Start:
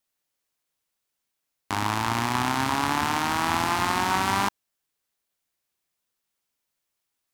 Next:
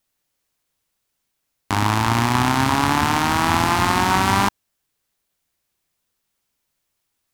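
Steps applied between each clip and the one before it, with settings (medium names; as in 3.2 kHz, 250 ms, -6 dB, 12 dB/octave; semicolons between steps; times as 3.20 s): bass shelf 190 Hz +7.5 dB; trim +5.5 dB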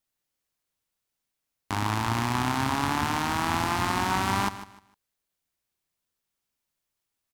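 feedback delay 152 ms, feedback 26%, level -14 dB; trim -8.5 dB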